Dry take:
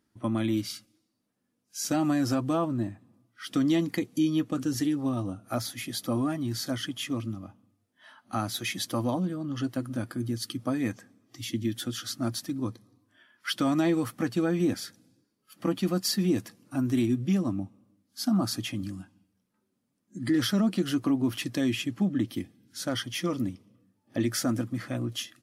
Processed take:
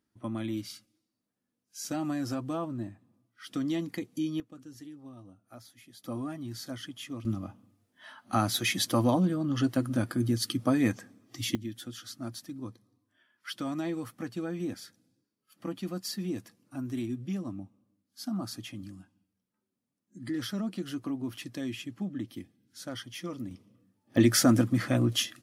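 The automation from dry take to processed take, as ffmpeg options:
-af "asetnsamples=n=441:p=0,asendcmd='4.4 volume volume -19dB;6.04 volume volume -8dB;7.25 volume volume 3.5dB;11.55 volume volume -8.5dB;23.51 volume volume -1.5dB;24.17 volume volume 6dB',volume=-6.5dB"

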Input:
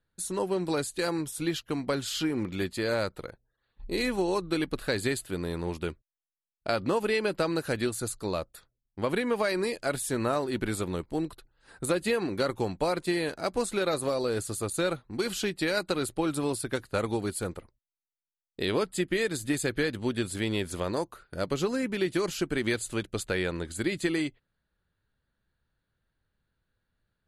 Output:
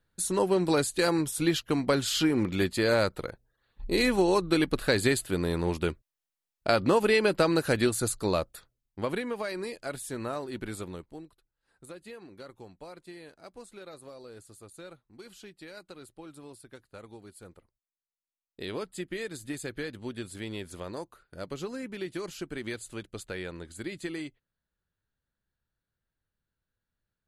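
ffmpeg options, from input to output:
-af "volume=14dB,afade=t=out:st=8.35:d=0.99:silence=0.298538,afade=t=out:st=10.84:d=0.44:silence=0.266073,afade=t=in:st=17.3:d=1.31:silence=0.316228"

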